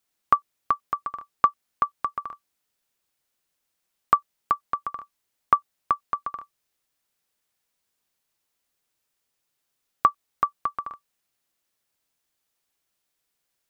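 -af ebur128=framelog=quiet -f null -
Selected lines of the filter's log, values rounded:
Integrated loudness:
  I:         -27.4 LUFS
  Threshold: -38.0 LUFS
Loudness range:
  LRA:         7.6 LU
  Threshold: -51.3 LUFS
  LRA low:   -36.3 LUFS
  LRA high:  -28.7 LUFS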